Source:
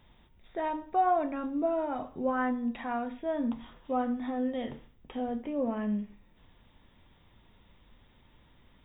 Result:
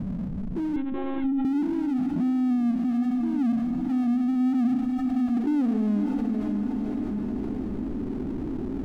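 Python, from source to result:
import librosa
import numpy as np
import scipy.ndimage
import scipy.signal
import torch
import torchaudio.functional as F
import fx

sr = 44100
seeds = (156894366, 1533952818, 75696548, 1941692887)

p1 = fx.ellip_bandstop(x, sr, low_hz=290.0, high_hz=730.0, order=3, stop_db=40, at=(4.75, 5.37))
p2 = fx.filter_sweep_lowpass(p1, sr, from_hz=190.0, to_hz=390.0, start_s=4.34, end_s=5.28, q=6.3)
p3 = fx.formant_cascade(p2, sr, vowel='i')
p4 = fx.power_curve(p3, sr, exponent=0.7)
p5 = p4 + fx.echo_diffused(p4, sr, ms=553, feedback_pct=44, wet_db=-9.5, dry=0)
p6 = fx.lpc_monotone(p5, sr, seeds[0], pitch_hz=270.0, order=16, at=(0.76, 1.45))
y = fx.env_flatten(p6, sr, amount_pct=70)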